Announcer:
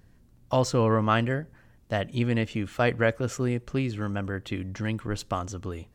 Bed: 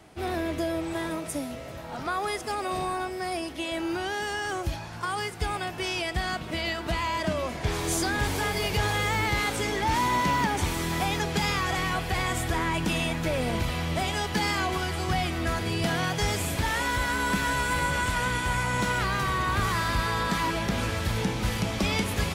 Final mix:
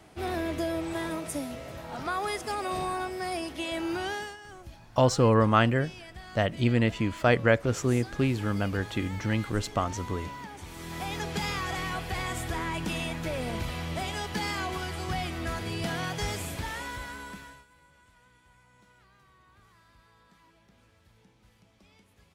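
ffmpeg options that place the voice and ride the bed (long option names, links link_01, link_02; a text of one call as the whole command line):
ffmpeg -i stem1.wav -i stem2.wav -filter_complex "[0:a]adelay=4450,volume=1.5dB[link_01];[1:a]volume=10dB,afade=type=out:start_time=4.1:duration=0.27:silence=0.177828,afade=type=in:start_time=10.66:duration=0.61:silence=0.266073,afade=type=out:start_time=16.25:duration=1.41:silence=0.0354813[link_02];[link_01][link_02]amix=inputs=2:normalize=0" out.wav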